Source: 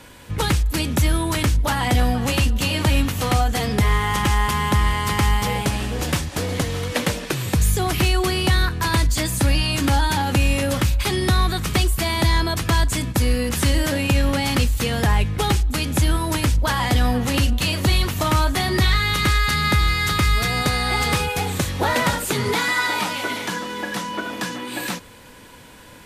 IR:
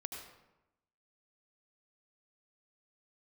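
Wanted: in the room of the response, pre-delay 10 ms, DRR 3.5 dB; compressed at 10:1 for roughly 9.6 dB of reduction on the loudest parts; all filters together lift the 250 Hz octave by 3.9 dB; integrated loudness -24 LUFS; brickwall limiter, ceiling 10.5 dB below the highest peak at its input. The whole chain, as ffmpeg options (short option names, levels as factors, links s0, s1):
-filter_complex "[0:a]equalizer=f=250:t=o:g=5,acompressor=threshold=0.0708:ratio=10,alimiter=limit=0.0794:level=0:latency=1,asplit=2[s0][s1];[1:a]atrim=start_sample=2205,adelay=10[s2];[s1][s2]afir=irnorm=-1:irlink=0,volume=0.794[s3];[s0][s3]amix=inputs=2:normalize=0,volume=1.88"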